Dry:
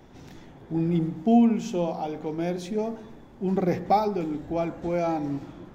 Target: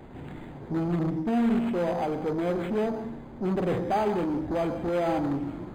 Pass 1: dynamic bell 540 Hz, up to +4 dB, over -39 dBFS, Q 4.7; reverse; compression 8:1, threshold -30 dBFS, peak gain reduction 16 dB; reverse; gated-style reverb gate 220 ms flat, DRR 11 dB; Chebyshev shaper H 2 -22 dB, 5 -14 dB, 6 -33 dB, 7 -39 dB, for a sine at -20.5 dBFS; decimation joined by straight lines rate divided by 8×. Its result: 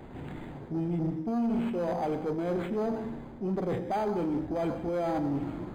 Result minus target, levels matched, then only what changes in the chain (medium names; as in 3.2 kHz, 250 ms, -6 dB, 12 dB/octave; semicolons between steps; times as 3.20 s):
compression: peak gain reduction +7.5 dB
change: compression 8:1, threshold -21.5 dBFS, peak gain reduction 8.5 dB